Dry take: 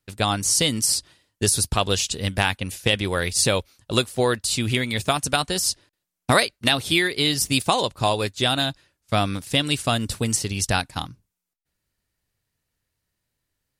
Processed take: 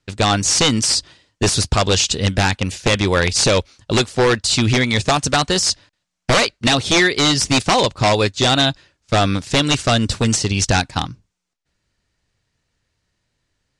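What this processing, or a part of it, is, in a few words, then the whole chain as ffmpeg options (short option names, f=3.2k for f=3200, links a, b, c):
synthesiser wavefolder: -filter_complex "[0:a]asettb=1/sr,asplit=3[a][b][c];[a]atrim=end=5.654[d];[b]atrim=start=5.65:end=6.34,asetpts=PTS-STARTPTS,afade=t=in:d=0.004:c=qsin,afade=t=out:st=0.686:d=0.004:c=qsin,equalizer=f=380:w=3.6:g=-13.5[e];[c]atrim=start=6.336[f];[d][e]acrossfade=d=0.004:c1=hsin:c2=qsin[g];[g][f]acrossfade=d=0.004:c1=qsin:c2=hsin,aeval=exprs='0.158*(abs(mod(val(0)/0.158+3,4)-2)-1)':c=same,lowpass=f=7.4k:w=0.5412,lowpass=f=7.4k:w=1.3066,volume=8.5dB"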